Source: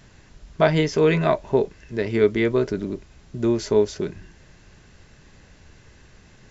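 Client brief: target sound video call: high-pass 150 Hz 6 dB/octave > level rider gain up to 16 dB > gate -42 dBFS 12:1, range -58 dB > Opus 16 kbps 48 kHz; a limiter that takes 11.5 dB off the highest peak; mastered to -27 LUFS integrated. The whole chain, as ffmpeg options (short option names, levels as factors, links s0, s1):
-af "alimiter=limit=0.2:level=0:latency=1,highpass=f=150:p=1,dynaudnorm=m=6.31,agate=range=0.00126:threshold=0.00794:ratio=12,volume=0.944" -ar 48000 -c:a libopus -b:a 16k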